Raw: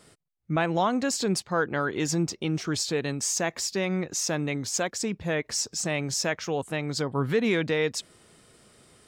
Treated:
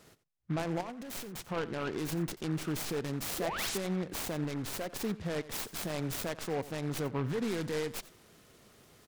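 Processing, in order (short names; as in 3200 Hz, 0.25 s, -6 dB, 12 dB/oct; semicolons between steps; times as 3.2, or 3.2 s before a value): tracing distortion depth 0.31 ms; dynamic EQ 1900 Hz, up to -6 dB, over -44 dBFS, Q 1.1; limiter -22 dBFS, peak gain reduction 8.5 dB; 0.81–1.45 negative-ratio compressor -39 dBFS, ratio -1; 3.38–3.78 painted sound rise 300–9300 Hz -34 dBFS; 4.44–4.95 hard clip -28 dBFS, distortion -26 dB; echo 88 ms -17 dB; noise-modulated delay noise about 1200 Hz, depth 0.062 ms; gain -3 dB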